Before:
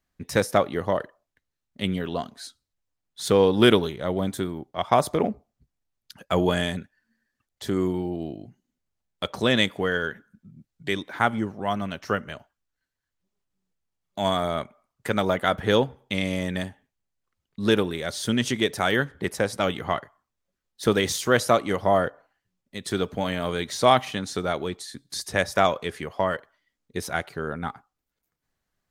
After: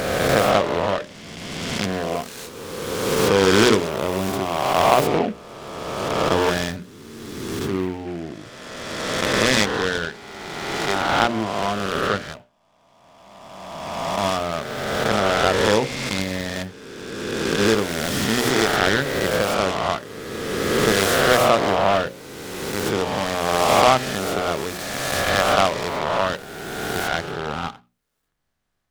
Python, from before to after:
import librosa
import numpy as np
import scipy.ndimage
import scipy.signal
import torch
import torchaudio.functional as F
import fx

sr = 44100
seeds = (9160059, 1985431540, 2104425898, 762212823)

y = fx.spec_swells(x, sr, rise_s=2.23)
y = fx.hum_notches(y, sr, base_hz=60, count=10)
y = fx.noise_mod_delay(y, sr, seeds[0], noise_hz=1700.0, depth_ms=0.058)